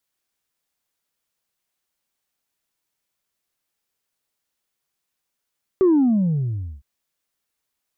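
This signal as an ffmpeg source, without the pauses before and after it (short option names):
-f lavfi -i "aevalsrc='0.251*clip((1.01-t)/1.01,0,1)*tanh(1.06*sin(2*PI*390*1.01/log(65/390)*(exp(log(65/390)*t/1.01)-1)))/tanh(1.06)':d=1.01:s=44100"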